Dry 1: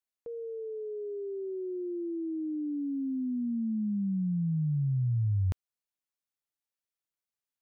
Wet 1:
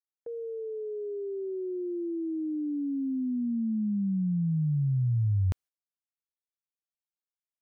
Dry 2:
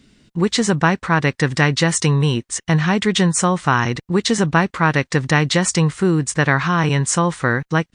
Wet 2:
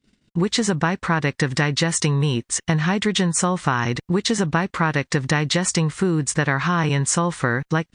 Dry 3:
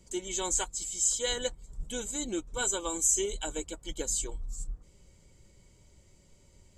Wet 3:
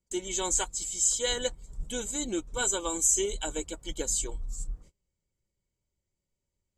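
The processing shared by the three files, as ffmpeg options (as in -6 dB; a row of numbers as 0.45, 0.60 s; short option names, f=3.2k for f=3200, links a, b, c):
-af "agate=range=-27dB:threshold=-50dB:ratio=16:detection=peak,acompressor=threshold=-19dB:ratio=4,volume=2dB"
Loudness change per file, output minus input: +2.0, -3.5, +2.0 LU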